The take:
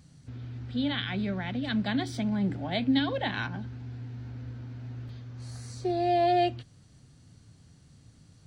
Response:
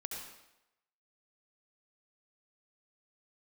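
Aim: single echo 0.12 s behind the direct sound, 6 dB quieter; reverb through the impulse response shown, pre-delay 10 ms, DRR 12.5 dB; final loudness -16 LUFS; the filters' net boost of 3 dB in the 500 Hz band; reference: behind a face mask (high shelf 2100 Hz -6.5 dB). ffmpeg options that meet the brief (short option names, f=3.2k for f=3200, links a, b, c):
-filter_complex "[0:a]equalizer=f=500:t=o:g=6,aecho=1:1:120:0.501,asplit=2[a][b];[1:a]atrim=start_sample=2205,adelay=10[c];[b][c]afir=irnorm=-1:irlink=0,volume=-12dB[d];[a][d]amix=inputs=2:normalize=0,highshelf=f=2.1k:g=-6.5,volume=10.5dB"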